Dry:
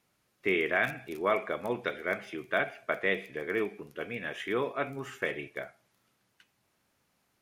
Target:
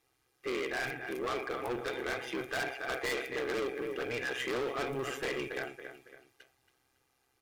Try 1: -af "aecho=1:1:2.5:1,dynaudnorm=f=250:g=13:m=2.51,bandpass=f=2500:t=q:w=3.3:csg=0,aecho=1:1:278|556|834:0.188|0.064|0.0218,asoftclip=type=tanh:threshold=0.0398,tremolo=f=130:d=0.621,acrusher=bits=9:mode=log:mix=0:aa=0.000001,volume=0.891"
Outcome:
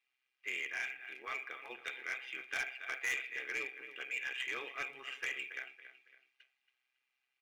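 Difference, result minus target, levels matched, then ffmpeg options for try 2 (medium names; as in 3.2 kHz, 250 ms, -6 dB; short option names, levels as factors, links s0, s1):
2 kHz band +3.0 dB
-af "aecho=1:1:2.5:1,dynaudnorm=f=250:g=13:m=2.51,aecho=1:1:278|556|834:0.188|0.064|0.0218,asoftclip=type=tanh:threshold=0.0398,tremolo=f=130:d=0.621,acrusher=bits=9:mode=log:mix=0:aa=0.000001,volume=0.891"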